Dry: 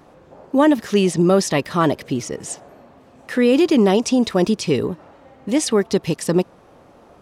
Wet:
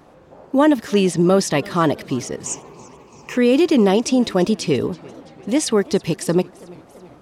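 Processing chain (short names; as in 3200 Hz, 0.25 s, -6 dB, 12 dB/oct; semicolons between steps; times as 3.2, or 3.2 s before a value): 2.46–3.37 ripple EQ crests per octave 0.74, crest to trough 17 dB; warbling echo 0.337 s, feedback 62%, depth 153 cents, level -23 dB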